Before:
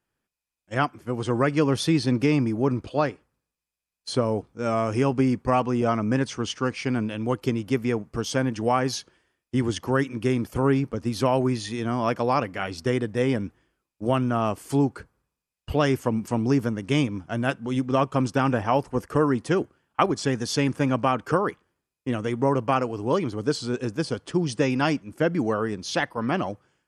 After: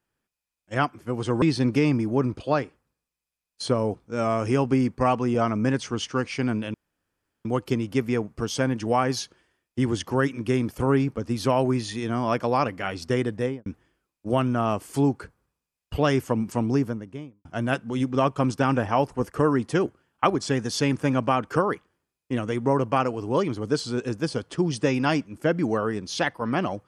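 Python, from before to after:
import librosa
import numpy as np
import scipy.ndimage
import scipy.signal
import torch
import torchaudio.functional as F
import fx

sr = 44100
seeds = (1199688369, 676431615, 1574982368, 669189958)

y = fx.studio_fade_out(x, sr, start_s=13.11, length_s=0.31)
y = fx.studio_fade_out(y, sr, start_s=16.33, length_s=0.88)
y = fx.edit(y, sr, fx.cut(start_s=1.42, length_s=0.47),
    fx.insert_room_tone(at_s=7.21, length_s=0.71), tone=tone)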